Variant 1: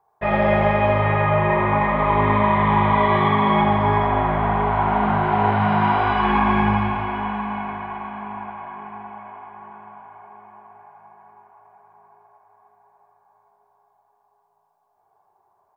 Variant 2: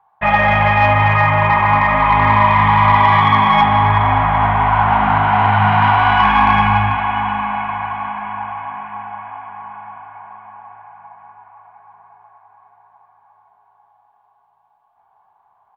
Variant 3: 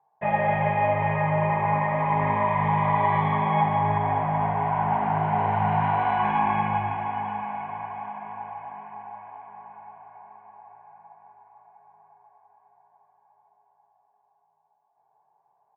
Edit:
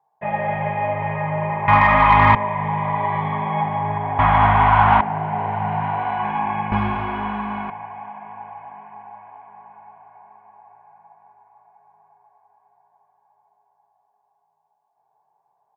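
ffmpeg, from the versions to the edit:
-filter_complex "[1:a]asplit=2[a][b];[2:a]asplit=4[c][d][e][f];[c]atrim=end=1.682[g];[a]atrim=start=1.678:end=2.352[h];[d]atrim=start=2.348:end=4.192[i];[b]atrim=start=4.188:end=5.012[j];[e]atrim=start=5.008:end=6.722[k];[0:a]atrim=start=6.718:end=7.702[l];[f]atrim=start=7.698[m];[g][h]acrossfade=d=0.004:c1=hsin:c2=hsin[n];[n][i]acrossfade=d=0.004:c1=hsin:c2=hsin[o];[o][j]acrossfade=d=0.004:c1=hsin:c2=hsin[p];[p][k]acrossfade=d=0.004:c1=hsin:c2=hsin[q];[q][l]acrossfade=d=0.004:c1=hsin:c2=hsin[r];[r][m]acrossfade=d=0.004:c1=hsin:c2=hsin"

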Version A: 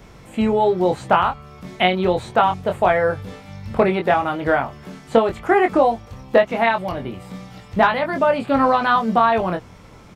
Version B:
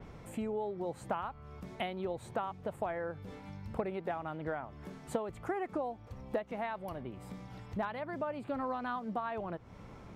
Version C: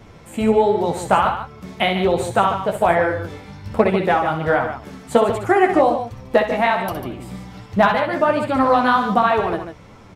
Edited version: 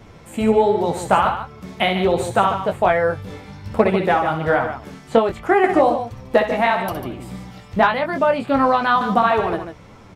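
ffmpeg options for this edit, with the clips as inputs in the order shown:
-filter_complex "[0:a]asplit=3[a][b][c];[2:a]asplit=4[d][e][f][g];[d]atrim=end=2.722[h];[a]atrim=start=2.718:end=3.302[i];[e]atrim=start=3.298:end=4.942[j];[b]atrim=start=4.938:end=5.642[k];[f]atrim=start=5.638:end=7.512[l];[c]atrim=start=7.508:end=9.012[m];[g]atrim=start=9.008[n];[h][i]acrossfade=d=0.004:c1=hsin:c2=hsin[o];[o][j]acrossfade=d=0.004:c1=hsin:c2=hsin[p];[p][k]acrossfade=d=0.004:c1=hsin:c2=hsin[q];[q][l]acrossfade=d=0.004:c1=hsin:c2=hsin[r];[r][m]acrossfade=d=0.004:c1=hsin:c2=hsin[s];[s][n]acrossfade=d=0.004:c1=hsin:c2=hsin"

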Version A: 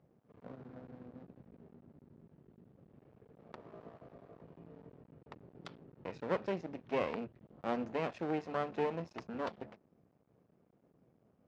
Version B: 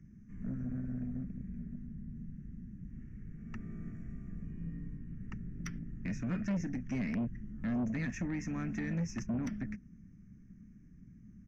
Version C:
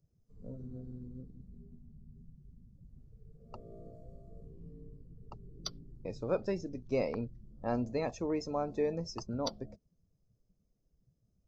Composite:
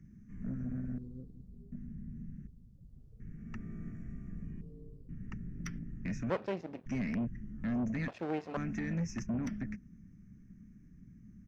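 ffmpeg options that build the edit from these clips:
-filter_complex "[2:a]asplit=3[a][b][c];[0:a]asplit=2[d][e];[1:a]asplit=6[f][g][h][i][j][k];[f]atrim=end=0.982[l];[a]atrim=start=0.978:end=1.722[m];[g]atrim=start=1.718:end=2.472[n];[b]atrim=start=2.468:end=3.202[o];[h]atrim=start=3.198:end=4.612[p];[c]atrim=start=4.608:end=5.092[q];[i]atrim=start=5.088:end=6.302[r];[d]atrim=start=6.298:end=6.862[s];[j]atrim=start=6.858:end=8.082[t];[e]atrim=start=8.078:end=8.572[u];[k]atrim=start=8.568[v];[l][m]acrossfade=d=0.004:c1=hsin:c2=hsin[w];[w][n]acrossfade=d=0.004:c1=hsin:c2=hsin[x];[x][o]acrossfade=d=0.004:c1=hsin:c2=hsin[y];[y][p]acrossfade=d=0.004:c1=hsin:c2=hsin[z];[z][q]acrossfade=d=0.004:c1=hsin:c2=hsin[aa];[aa][r]acrossfade=d=0.004:c1=hsin:c2=hsin[ab];[ab][s]acrossfade=d=0.004:c1=hsin:c2=hsin[ac];[ac][t]acrossfade=d=0.004:c1=hsin:c2=hsin[ad];[ad][u]acrossfade=d=0.004:c1=hsin:c2=hsin[ae];[ae][v]acrossfade=d=0.004:c1=hsin:c2=hsin"

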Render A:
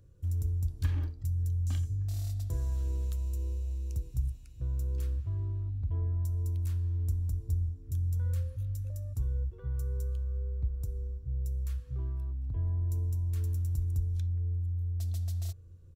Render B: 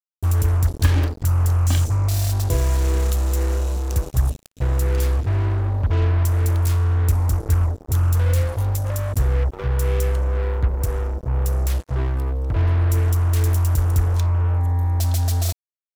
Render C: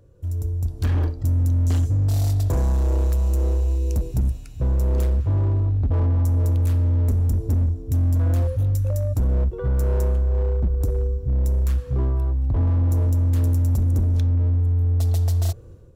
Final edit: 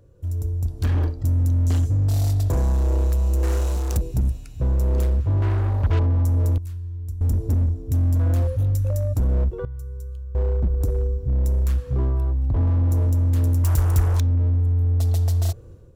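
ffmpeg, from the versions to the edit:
-filter_complex "[1:a]asplit=3[a][b][c];[0:a]asplit=2[d][e];[2:a]asplit=6[f][g][h][i][j][k];[f]atrim=end=3.432[l];[a]atrim=start=3.428:end=3.972[m];[g]atrim=start=3.968:end=5.422[n];[b]atrim=start=5.418:end=5.992[o];[h]atrim=start=5.988:end=6.582[p];[d]atrim=start=6.578:end=7.212[q];[i]atrim=start=7.208:end=9.652[r];[e]atrim=start=9.648:end=10.352[s];[j]atrim=start=10.348:end=13.642[t];[c]atrim=start=13.638:end=14.202[u];[k]atrim=start=14.198[v];[l][m]acrossfade=d=0.004:c1=hsin:c2=hsin[w];[w][n]acrossfade=d=0.004:c1=hsin:c2=hsin[x];[x][o]acrossfade=d=0.004:c1=hsin:c2=hsin[y];[y][p]acrossfade=d=0.004:c1=hsin:c2=hsin[z];[z][q]acrossfade=d=0.004:c1=hsin:c2=hsin[aa];[aa][r]acrossfade=d=0.004:c1=hsin:c2=hsin[ab];[ab][s]acrossfade=d=0.004:c1=hsin:c2=hsin[ac];[ac][t]acrossfade=d=0.004:c1=hsin:c2=hsin[ad];[ad][u]acrossfade=d=0.004:c1=hsin:c2=hsin[ae];[ae][v]acrossfade=d=0.004:c1=hsin:c2=hsin"

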